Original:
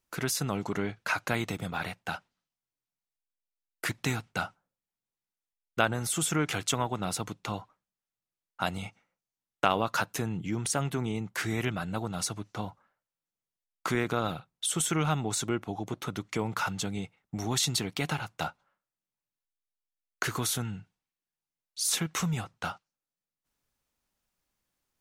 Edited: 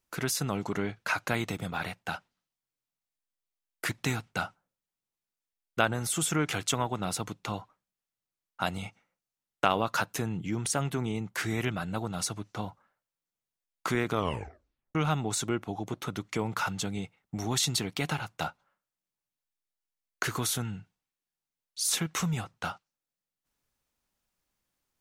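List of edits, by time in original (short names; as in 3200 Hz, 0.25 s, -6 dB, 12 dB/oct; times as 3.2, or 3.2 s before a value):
14.11 tape stop 0.84 s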